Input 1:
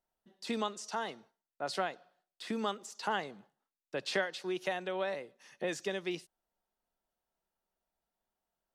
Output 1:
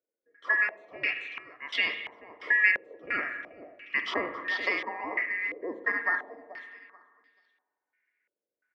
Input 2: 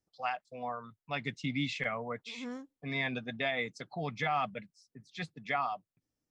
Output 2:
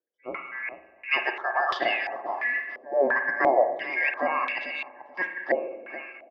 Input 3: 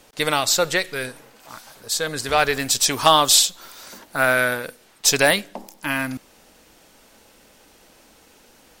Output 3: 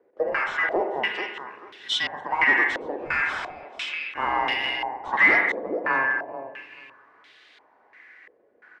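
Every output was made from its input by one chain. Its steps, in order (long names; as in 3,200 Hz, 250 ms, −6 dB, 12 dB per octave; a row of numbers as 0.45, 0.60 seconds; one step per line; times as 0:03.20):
band-splitting scrambler in four parts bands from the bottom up 2143
high-pass filter 97 Hz 12 dB per octave
low shelf with overshoot 210 Hz −12 dB, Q 1.5
repeating echo 435 ms, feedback 23%, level −11 dB
spring reverb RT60 1.5 s, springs 41/54 ms, chirp 40 ms, DRR 6.5 dB
gain into a clipping stage and back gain 18 dB
dynamic equaliser 820 Hz, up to +8 dB, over −45 dBFS, Q 1.6
low-pass on a step sequencer 2.9 Hz 510–3,500 Hz
normalise the peak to −9 dBFS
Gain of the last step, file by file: +1.5, +2.5, −5.5 decibels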